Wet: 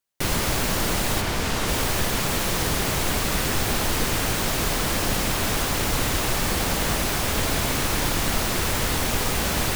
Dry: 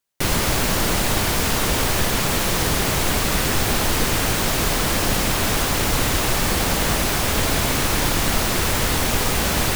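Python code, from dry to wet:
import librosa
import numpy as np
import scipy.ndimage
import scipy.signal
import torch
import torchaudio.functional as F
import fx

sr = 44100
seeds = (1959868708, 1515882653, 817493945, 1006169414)

y = fx.high_shelf(x, sr, hz=fx.line((1.2, 6400.0), (1.67, 12000.0)), db=-9.5, at=(1.2, 1.67), fade=0.02)
y = y * librosa.db_to_amplitude(-3.5)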